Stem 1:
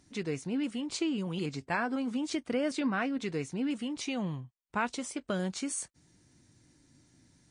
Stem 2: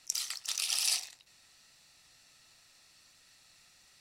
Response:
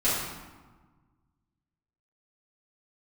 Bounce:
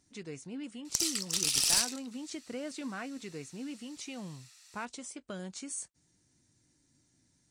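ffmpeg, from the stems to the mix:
-filter_complex "[0:a]volume=-9dB[link_01];[1:a]highpass=frequency=990:width=0.5412,highpass=frequency=990:width=1.3066,aeval=exprs='clip(val(0),-1,0.0398)':channel_layout=same,adelay=850,volume=0dB[link_02];[link_01][link_02]amix=inputs=2:normalize=0,equalizer=frequency=7500:width_type=o:width=1.3:gain=7"

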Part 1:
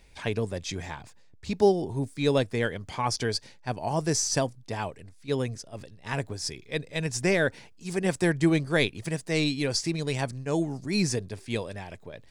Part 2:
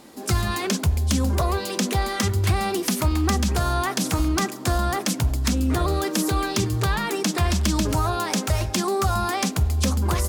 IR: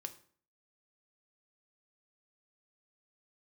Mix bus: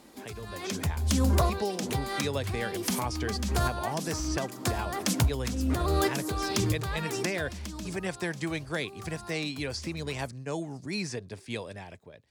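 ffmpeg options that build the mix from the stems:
-filter_complex "[0:a]acrossover=split=150|590|3500|7100[link_01][link_02][link_03][link_04][link_05];[link_01]acompressor=threshold=-42dB:ratio=4[link_06];[link_02]acompressor=threshold=-34dB:ratio=4[link_07];[link_03]acompressor=threshold=-31dB:ratio=4[link_08];[link_04]acompressor=threshold=-41dB:ratio=4[link_09];[link_05]acompressor=threshold=-51dB:ratio=4[link_10];[link_06][link_07][link_08][link_09][link_10]amix=inputs=5:normalize=0,volume=-12dB,asplit=2[link_11][link_12];[1:a]acompressor=threshold=-22dB:ratio=6,volume=-7dB,afade=type=out:start_time=7.22:duration=0.55:silence=0.237137[link_13];[link_12]apad=whole_len=453563[link_14];[link_13][link_14]sidechaincompress=threshold=-50dB:ratio=10:attack=10:release=437[link_15];[link_11][link_15]amix=inputs=2:normalize=0,highpass=42,dynaudnorm=framelen=270:gausssize=5:maxgain=10dB"

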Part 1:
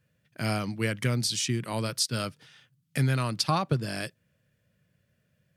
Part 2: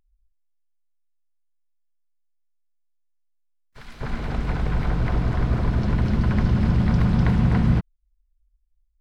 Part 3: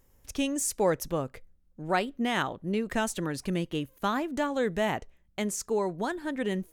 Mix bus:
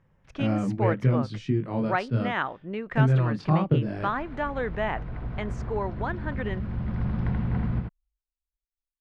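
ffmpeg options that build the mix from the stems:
ffmpeg -i stem1.wav -i stem2.wav -i stem3.wav -filter_complex "[0:a]tiltshelf=frequency=970:gain=8.5,flanger=delay=19.5:depth=5.8:speed=0.69,volume=1dB[link_01];[1:a]agate=range=-33dB:threshold=-51dB:ratio=3:detection=peak,volume=-10.5dB,asplit=2[link_02][link_03];[link_03]volume=-3.5dB[link_04];[2:a]equalizer=frequency=1400:width_type=o:width=2.7:gain=9,volume=-6dB,asplit=2[link_05][link_06];[link_06]apad=whole_len=397173[link_07];[link_02][link_07]sidechaincompress=threshold=-38dB:ratio=8:attack=45:release=770[link_08];[link_04]aecho=0:1:82:1[link_09];[link_01][link_08][link_05][link_09]amix=inputs=4:normalize=0,lowpass=2600" out.wav

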